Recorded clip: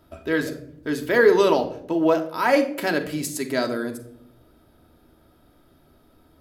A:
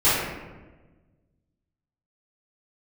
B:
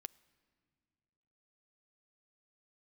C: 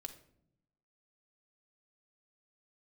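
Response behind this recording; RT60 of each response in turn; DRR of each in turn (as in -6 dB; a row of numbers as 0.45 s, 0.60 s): C; 1.3 s, 2.1 s, no single decay rate; -16.0 dB, 15.5 dB, 4.5 dB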